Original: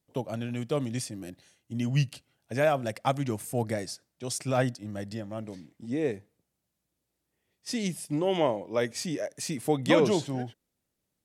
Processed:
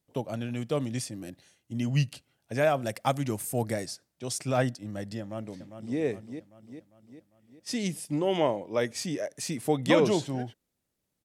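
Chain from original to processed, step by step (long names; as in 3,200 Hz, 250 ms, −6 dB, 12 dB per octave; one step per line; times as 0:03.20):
0:02.81–0:03.86: high-shelf EQ 8,900 Hz +9 dB
0:05.20–0:05.99: delay throw 400 ms, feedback 55%, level −8.5 dB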